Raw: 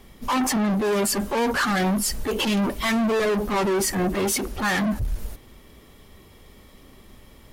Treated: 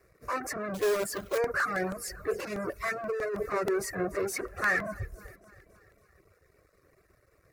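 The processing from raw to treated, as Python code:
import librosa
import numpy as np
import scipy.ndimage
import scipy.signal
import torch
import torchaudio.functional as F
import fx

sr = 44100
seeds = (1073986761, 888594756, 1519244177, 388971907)

y = scipy.signal.sosfilt(scipy.signal.butter(2, 87.0, 'highpass', fs=sr, output='sos'), x)
y = fx.high_shelf(y, sr, hz=4500.0, db=-11.5)
y = fx.echo_feedback(y, sr, ms=282, feedback_pct=59, wet_db=-17)
y = np.sign(y) * np.maximum(np.abs(y) - 10.0 ** (-55.5 / 20.0), 0.0)
y = fx.fixed_phaser(y, sr, hz=870.0, stages=6)
y = fx.quant_companded(y, sr, bits=4, at=(0.74, 1.38))
y = fx.over_compress(y, sr, threshold_db=-26.0, ratio=-1.0, at=(3.02, 3.61), fade=0.02)
y = fx.peak_eq(y, sr, hz=1900.0, db=4.5, octaves=2.3, at=(4.33, 5.06))
y = fx.dereverb_blind(y, sr, rt60_s=0.71)
y = fx.buffer_crackle(y, sr, first_s=0.96, period_s=0.16, block=64, kind='repeat')
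y = y * 10.0 ** (-2.0 / 20.0)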